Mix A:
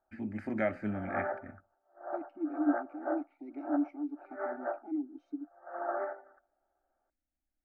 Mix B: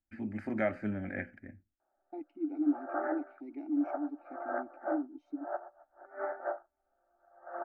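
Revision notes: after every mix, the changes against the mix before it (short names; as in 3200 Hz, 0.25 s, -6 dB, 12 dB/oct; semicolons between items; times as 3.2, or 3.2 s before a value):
background: entry +1.80 s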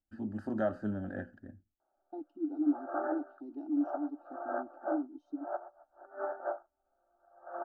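master: add Butterworth band-stop 2200 Hz, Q 1.4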